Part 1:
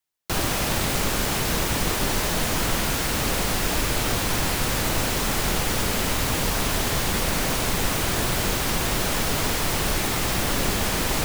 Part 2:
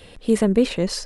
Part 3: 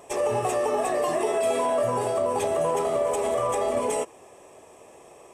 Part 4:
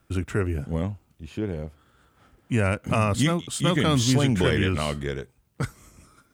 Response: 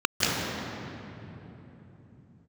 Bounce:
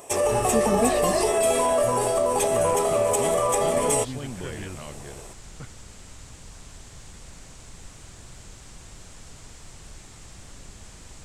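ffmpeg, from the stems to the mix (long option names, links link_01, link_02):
-filter_complex "[0:a]lowpass=frequency=7700:width_type=q:width=3.4,acrossover=split=140[link_01][link_02];[link_02]acompressor=threshold=-30dB:ratio=6[link_03];[link_01][link_03]amix=inputs=2:normalize=0,volume=-16.5dB[link_04];[1:a]aeval=exprs='val(0)+0.0316*(sin(2*PI*50*n/s)+sin(2*PI*2*50*n/s)/2+sin(2*PI*3*50*n/s)/3+sin(2*PI*4*50*n/s)/4+sin(2*PI*5*50*n/s)/5)':channel_layout=same,adelay=250,volume=-7dB[link_05];[2:a]highshelf=frequency=5300:gain=11,volume=2dB[link_06];[3:a]lowpass=4000,volume=-13.5dB[link_07];[link_04][link_05][link_06][link_07]amix=inputs=4:normalize=0"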